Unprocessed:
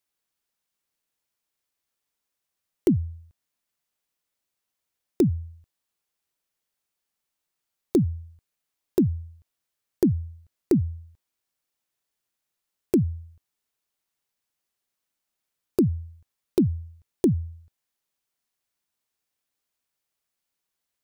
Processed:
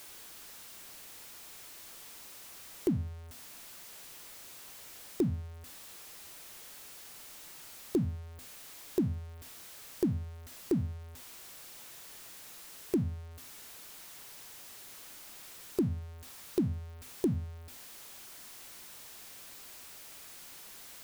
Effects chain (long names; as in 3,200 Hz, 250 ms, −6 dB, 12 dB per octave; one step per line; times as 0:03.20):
converter with a step at zero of −34 dBFS
mains-hum notches 50/100/150/200/250 Hz
level −9 dB